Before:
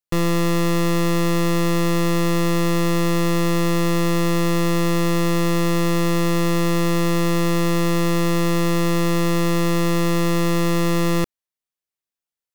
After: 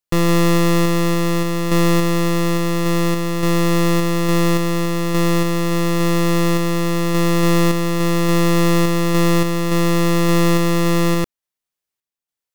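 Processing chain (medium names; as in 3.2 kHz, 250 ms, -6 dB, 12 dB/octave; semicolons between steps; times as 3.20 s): random-step tremolo; trim +5 dB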